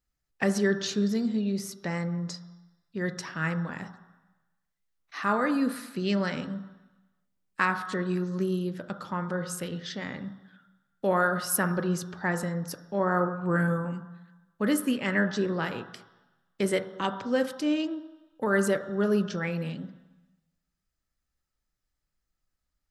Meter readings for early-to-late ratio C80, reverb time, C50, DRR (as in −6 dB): 12.5 dB, 1.1 s, 10.5 dB, 7.0 dB